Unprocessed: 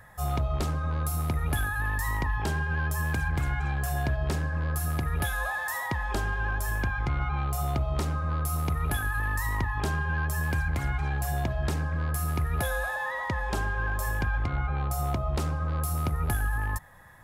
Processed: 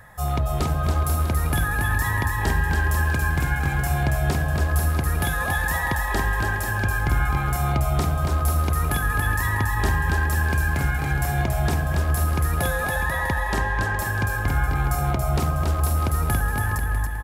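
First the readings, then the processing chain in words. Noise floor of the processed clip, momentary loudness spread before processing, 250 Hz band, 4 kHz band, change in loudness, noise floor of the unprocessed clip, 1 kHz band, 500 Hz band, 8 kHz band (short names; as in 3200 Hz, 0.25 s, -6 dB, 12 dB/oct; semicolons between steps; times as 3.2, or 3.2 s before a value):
-26 dBFS, 1 LU, +6.0 dB, +6.5 dB, +6.5 dB, -33 dBFS, +6.5 dB, +6.5 dB, +6.5 dB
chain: bouncing-ball echo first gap 0.28 s, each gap 0.75×, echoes 5; gain +4.5 dB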